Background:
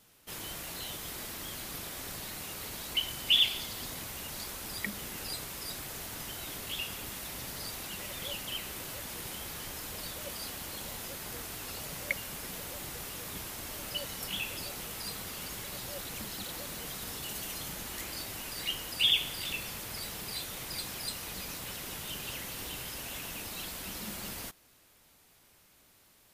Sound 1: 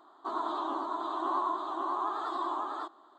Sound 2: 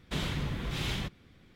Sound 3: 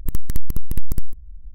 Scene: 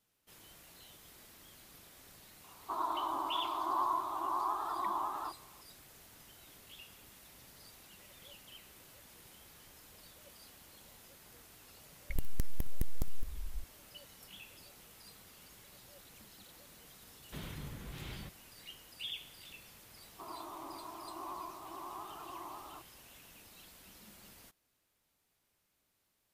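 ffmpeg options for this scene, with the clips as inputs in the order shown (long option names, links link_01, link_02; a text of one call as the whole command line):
ffmpeg -i bed.wav -i cue0.wav -i cue1.wav -i cue2.wav -filter_complex "[1:a]asplit=2[link_01][link_02];[0:a]volume=-16.5dB[link_03];[link_01]equalizer=frequency=950:width_type=o:width=0.76:gain=7.5[link_04];[3:a]asoftclip=type=tanh:threshold=-20.5dB[link_05];[2:a]aemphasis=mode=reproduction:type=cd[link_06];[link_02]lowpass=1300[link_07];[link_04]atrim=end=3.18,asetpts=PTS-STARTPTS,volume=-8dB,afade=type=in:duration=0.004:curve=hsin,afade=type=out:start_time=3.176:duration=0.004:curve=hsin,adelay=2440[link_08];[link_05]atrim=end=1.54,asetpts=PTS-STARTPTS,volume=-2.5dB,afade=type=in:duration=0.004:curve=hsin,afade=type=out:start_time=1.536:duration=0.004:curve=hsin,adelay=12100[link_09];[link_06]atrim=end=1.55,asetpts=PTS-STARTPTS,volume=-12dB,afade=type=in:duration=0.004:curve=hsin,afade=type=out:start_time=1.546:duration=0.004:curve=hsin,adelay=17210[link_10];[link_07]atrim=end=3.18,asetpts=PTS-STARTPTS,volume=-12dB,afade=type=in:duration=0.004:curve=hsin,afade=type=out:start_time=3.176:duration=0.004:curve=hsin,adelay=19940[link_11];[link_03][link_08][link_09][link_10][link_11]amix=inputs=5:normalize=0" out.wav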